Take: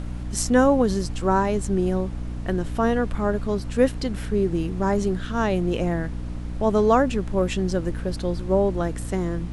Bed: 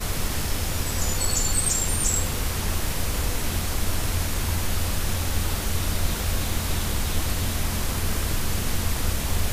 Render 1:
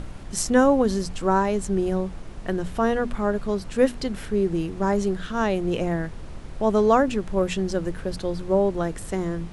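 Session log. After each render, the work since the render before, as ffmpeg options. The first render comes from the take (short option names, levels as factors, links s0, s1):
-af "bandreject=f=60:t=h:w=6,bandreject=f=120:t=h:w=6,bandreject=f=180:t=h:w=6,bandreject=f=240:t=h:w=6,bandreject=f=300:t=h:w=6"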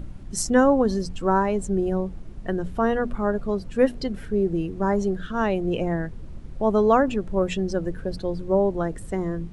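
-af "afftdn=nr=11:nf=-37"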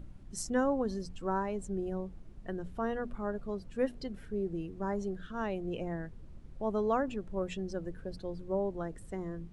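-af "volume=0.251"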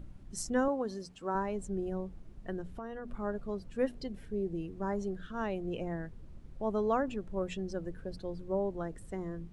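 -filter_complex "[0:a]asettb=1/sr,asplit=3[s0][s1][s2];[s0]atrim=end=0.684[s3];[s1]atrim=start=0.68:end=1.35,asetpts=PTS-STARTPTS,afade=t=in:d=0.004:c=qsin,afade=t=out:st=0.666:d=0.004:c=qsin,highpass=f=300:p=1[s4];[s2]atrim=start=1.346[s5];[s3][s4]acrossfade=d=0.004:c1=hsin:c2=qsin[s6];[s6][s5]acrossfade=d=0.004:c1=qsin:c2=hsin,asettb=1/sr,asplit=3[s7][s8][s9];[s7]atrim=end=2.614[s10];[s8]atrim=start=2.61:end=3.09,asetpts=PTS-STARTPTS,afade=t=in:d=0.004:c=qsin,afade=t=out:st=0.476:d=0.004:c=qsin,acompressor=threshold=0.0126:ratio=5:attack=3.2:release=140:knee=1:detection=peak[s11];[s9]atrim=start=3.086[s12];[s10][s11]acrossfade=d=0.004:c1=hsin:c2=qsin[s13];[s13][s12]acrossfade=d=0.004:c1=qsin:c2=hsin,asettb=1/sr,asplit=3[s14][s15][s16];[s14]atrim=end=4.014[s17];[s15]atrim=start=4.01:end=4.63,asetpts=PTS-STARTPTS,afade=t=in:d=0.004:c=qsin,afade=t=out:st=0.616:d=0.004:c=qsin,equalizer=f=1400:w=3.3:g=-8[s18];[s16]atrim=start=4.626[s19];[s17][s18]acrossfade=d=0.004:c1=hsin:c2=qsin[s20];[s20][s19]acrossfade=d=0.004:c1=qsin:c2=hsin"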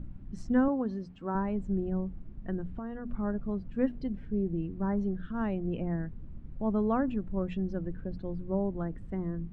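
-af "lowpass=2400,lowshelf=f=330:t=q:w=1.5:g=6"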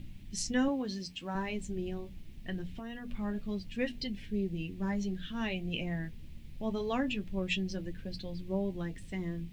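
-af "aexciter=amount=15.5:drive=4.3:freq=2100,flanger=delay=9.2:depth=4.2:regen=-47:speed=0.25:shape=triangular"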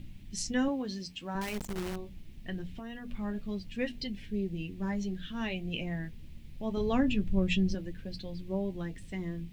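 -filter_complex "[0:a]asettb=1/sr,asplit=3[s0][s1][s2];[s0]atrim=end=1.414[s3];[s1]atrim=start=1.41:end=1.96,asetpts=PTS-STARTPTS,afade=t=in:d=0.004:c=qsin,afade=t=out:st=0.546:d=0.004:c=qsin,acrusher=bits=7:dc=4:mix=0:aa=0.000001[s4];[s2]atrim=start=1.956[s5];[s3][s4]acrossfade=d=0.004:c1=hsin:c2=qsin[s6];[s6][s5]acrossfade=d=0.004:c1=qsin:c2=hsin,asettb=1/sr,asplit=3[s7][s8][s9];[s7]atrim=end=6.774[s10];[s8]atrim=start=6.77:end=7.75,asetpts=PTS-STARTPTS,afade=t=in:d=0.004:c=qsin,afade=t=out:st=0.976:d=0.004:c=qsin,lowshelf=f=280:g=11[s11];[s9]atrim=start=7.746[s12];[s10][s11]acrossfade=d=0.004:c1=hsin:c2=qsin[s13];[s13][s12]acrossfade=d=0.004:c1=qsin:c2=hsin"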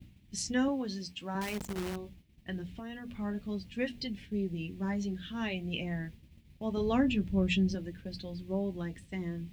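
-af "highpass=f=41:w=0.5412,highpass=f=41:w=1.3066,agate=range=0.0224:threshold=0.00631:ratio=3:detection=peak"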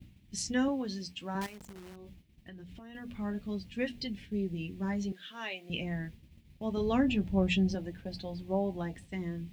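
-filter_complex "[0:a]asettb=1/sr,asplit=3[s0][s1][s2];[s0]atrim=end=1.464[s3];[s1]atrim=start=1.46:end=2.95,asetpts=PTS-STARTPTS,afade=t=in:d=0.004:c=qsin,afade=t=out:st=1.486:d=0.004:c=qsin,acompressor=threshold=0.00631:ratio=12:attack=3.2:release=140:knee=1:detection=peak[s4];[s2]atrim=start=2.946[s5];[s3][s4]acrossfade=d=0.004:c1=hsin:c2=qsin[s6];[s6][s5]acrossfade=d=0.004:c1=qsin:c2=hsin,asettb=1/sr,asplit=3[s7][s8][s9];[s7]atrim=end=5.124[s10];[s8]atrim=start=5.12:end=5.7,asetpts=PTS-STARTPTS,afade=t=in:d=0.004:c=qsin,afade=t=out:st=0.576:d=0.004:c=qsin,highpass=550[s11];[s9]atrim=start=5.696[s12];[s10][s11]acrossfade=d=0.004:c1=hsin:c2=qsin[s13];[s13][s12]acrossfade=d=0.004:c1=qsin:c2=hsin,asettb=1/sr,asplit=3[s14][s15][s16];[s14]atrim=end=7.094[s17];[s15]atrim=start=7.09:end=9.08,asetpts=PTS-STARTPTS,afade=t=in:d=0.004:c=qsin,afade=t=out:st=1.986:d=0.004:c=qsin,equalizer=f=770:w=2:g=11[s18];[s16]atrim=start=9.076[s19];[s17][s18]acrossfade=d=0.004:c1=hsin:c2=qsin[s20];[s20][s19]acrossfade=d=0.004:c1=qsin:c2=hsin"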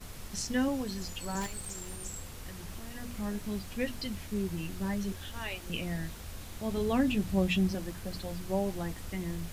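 -filter_complex "[1:a]volume=0.119[s0];[0:a][s0]amix=inputs=2:normalize=0"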